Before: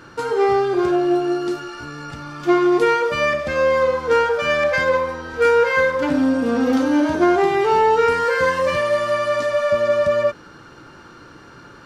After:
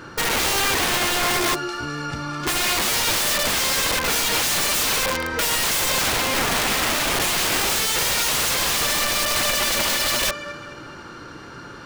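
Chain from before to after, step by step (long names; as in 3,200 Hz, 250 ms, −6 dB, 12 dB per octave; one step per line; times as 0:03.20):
delay with a high-pass on its return 211 ms, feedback 44%, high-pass 2,100 Hz, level −4 dB
wrap-around overflow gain 20.5 dB
level +4 dB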